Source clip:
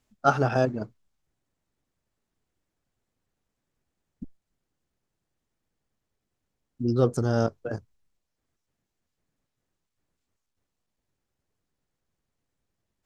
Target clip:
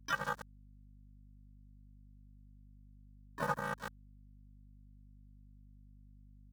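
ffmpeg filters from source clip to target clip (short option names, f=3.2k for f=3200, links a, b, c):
-filter_complex "[0:a]asetrate=88200,aresample=44100,asplit=2[a][b];[b]adelay=140,lowpass=f=2.1k:p=1,volume=-13.5dB,asplit=2[c][d];[d]adelay=140,lowpass=f=2.1k:p=1,volume=0.15[e];[a][c][e]amix=inputs=3:normalize=0,afftfilt=real='hypot(re,im)*cos(PI*b)':imag='0':win_size=512:overlap=0.75,aeval=exprs='val(0)*gte(abs(val(0)),0.0447)':c=same,aeval=exprs='val(0)*sin(2*PI*200*n/s)':c=same,adynamicequalizer=threshold=0.00447:dfrequency=6100:dqfactor=1.3:tfrequency=6100:tqfactor=1.3:attack=5:release=100:ratio=0.375:range=1.5:mode=boostabove:tftype=bell,bandreject=f=1.4k:w=9.1,agate=range=-15dB:threshold=-45dB:ratio=16:detection=peak,asplit=3[f][g][h];[g]asetrate=52444,aresample=44100,atempo=0.840896,volume=-9dB[i];[h]asetrate=88200,aresample=44100,atempo=0.5,volume=-14dB[j];[f][i][j]amix=inputs=3:normalize=0,acompressor=threshold=-39dB:ratio=6,aeval=exprs='val(0)+0.000708*(sin(2*PI*50*n/s)+sin(2*PI*2*50*n/s)/2+sin(2*PI*3*50*n/s)/3+sin(2*PI*4*50*n/s)/4+sin(2*PI*5*50*n/s)/5)':c=same,highshelf=f=1.9k:t=q:w=3:g=-6.5,volume=6dB"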